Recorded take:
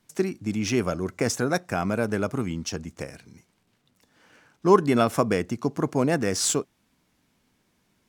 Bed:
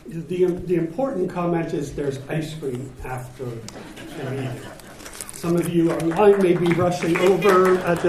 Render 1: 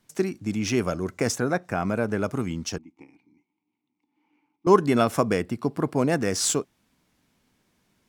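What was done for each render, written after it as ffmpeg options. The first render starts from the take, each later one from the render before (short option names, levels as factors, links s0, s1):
-filter_complex "[0:a]asettb=1/sr,asplit=3[s0][s1][s2];[s0]atrim=end=1.384[s3];[s1]atrim=start=1.38:end=2.24,asetpts=PTS-STARTPTS,afade=t=in:d=0.004:c=qsin,afade=t=out:st=0.856:d=0.004:c=qsin,acrossover=split=2700[s4][s5];[s5]acompressor=threshold=0.00447:ratio=4:attack=1:release=60[s6];[s4][s6]amix=inputs=2:normalize=0[s7];[s2]atrim=start=2.236[s8];[s3][s7]acrossfade=d=0.004:c1=hsin:c2=qsin[s9];[s9][s8]acrossfade=d=0.004:c1=qsin:c2=hsin,asettb=1/sr,asplit=3[s10][s11][s12];[s10]atrim=end=2.784[s13];[s11]atrim=start=2.78:end=4.67,asetpts=PTS-STARTPTS,afade=t=in:d=0.004:c=qsin,afade=t=out:st=1.886:d=0.004:c=qsin,asplit=3[s14][s15][s16];[s14]bandpass=f=300:t=q:w=8,volume=1[s17];[s15]bandpass=f=870:t=q:w=8,volume=0.501[s18];[s16]bandpass=f=2240:t=q:w=8,volume=0.355[s19];[s17][s18][s19]amix=inputs=3:normalize=0[s20];[s12]atrim=start=4.666[s21];[s13][s20]acrossfade=d=0.004:c1=hsin:c2=qsin[s22];[s22][s21]acrossfade=d=0.004:c1=qsin:c2=hsin,asettb=1/sr,asplit=3[s23][s24][s25];[s23]atrim=end=5.414[s26];[s24]atrim=start=5.41:end=5.98,asetpts=PTS-STARTPTS,afade=t=in:d=0.004:c=qsin,afade=t=out:st=0.566:d=0.004:c=qsin,equalizer=f=6400:w=4.6:g=-13.5[s27];[s25]atrim=start=5.976[s28];[s26][s27]acrossfade=d=0.004:c1=hsin:c2=qsin[s29];[s29][s28]acrossfade=d=0.004:c1=qsin:c2=hsin"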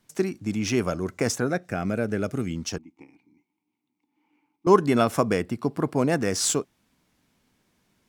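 -filter_complex "[0:a]asettb=1/sr,asplit=3[s0][s1][s2];[s0]atrim=end=1.474[s3];[s1]atrim=start=1.47:end=2.56,asetpts=PTS-STARTPTS,afade=t=in:d=0.004:c=qsin,afade=t=out:st=1.086:d=0.004:c=qsin,equalizer=f=980:w=2.7:g=-12.5[s4];[s2]atrim=start=2.556[s5];[s3][s4]acrossfade=d=0.004:c1=hsin:c2=qsin[s6];[s6][s5]acrossfade=d=0.004:c1=qsin:c2=hsin"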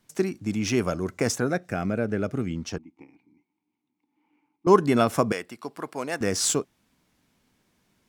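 -filter_complex "[0:a]asettb=1/sr,asplit=3[s0][s1][s2];[s0]atrim=end=1.864[s3];[s1]atrim=start=1.86:end=4.68,asetpts=PTS-STARTPTS,afade=t=in:d=0.004:c=qsin,afade=t=out:st=2.816:d=0.004:c=qsin,highshelf=f=5000:g=-10.5[s4];[s2]atrim=start=4.676[s5];[s3][s4]acrossfade=d=0.004:c1=hsin:c2=qsin[s6];[s6][s5]acrossfade=d=0.004:c1=qsin:c2=hsin,asettb=1/sr,asplit=3[s7][s8][s9];[s7]atrim=end=5.324[s10];[s8]atrim=start=5.32:end=6.21,asetpts=PTS-STARTPTS,afade=t=in:d=0.004:c=qsin,afade=t=out:st=0.886:d=0.004:c=qsin,highpass=f=1100:p=1[s11];[s9]atrim=start=6.206[s12];[s10][s11]acrossfade=d=0.004:c1=hsin:c2=qsin[s13];[s13][s12]acrossfade=d=0.004:c1=qsin:c2=hsin"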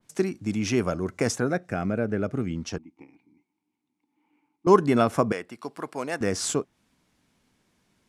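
-af "lowpass=f=12000:w=0.5412,lowpass=f=12000:w=1.3066,adynamicequalizer=threshold=0.00794:dfrequency=2400:dqfactor=0.7:tfrequency=2400:tqfactor=0.7:attack=5:release=100:ratio=0.375:range=4:mode=cutabove:tftype=highshelf"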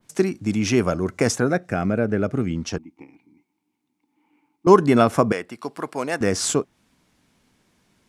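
-af "volume=1.78,alimiter=limit=0.794:level=0:latency=1"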